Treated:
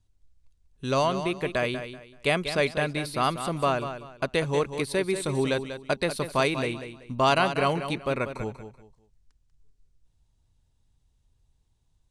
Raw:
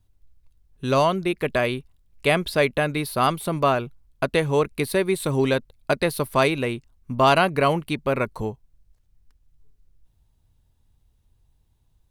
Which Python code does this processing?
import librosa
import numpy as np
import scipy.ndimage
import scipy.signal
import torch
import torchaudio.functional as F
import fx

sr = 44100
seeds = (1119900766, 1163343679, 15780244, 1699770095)

y = scipy.signal.sosfilt(scipy.signal.butter(4, 8500.0, 'lowpass', fs=sr, output='sos'), x)
y = fx.high_shelf(y, sr, hz=5500.0, db=9.0)
y = fx.echo_feedback(y, sr, ms=191, feedback_pct=27, wet_db=-10)
y = y * librosa.db_to_amplitude(-5.0)